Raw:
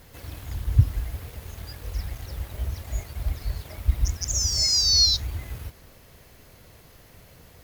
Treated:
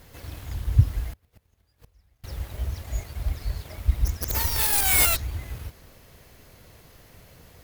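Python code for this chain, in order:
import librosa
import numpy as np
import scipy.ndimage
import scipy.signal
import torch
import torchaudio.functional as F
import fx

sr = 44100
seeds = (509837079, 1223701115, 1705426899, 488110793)

y = fx.tracing_dist(x, sr, depth_ms=0.33)
y = fx.gate_flip(y, sr, shuts_db=-29.0, range_db=-30, at=(1.13, 2.24))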